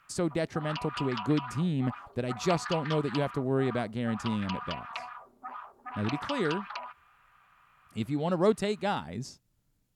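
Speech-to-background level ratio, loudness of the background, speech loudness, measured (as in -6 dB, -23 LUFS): 8.5 dB, -40.0 LUFS, -31.5 LUFS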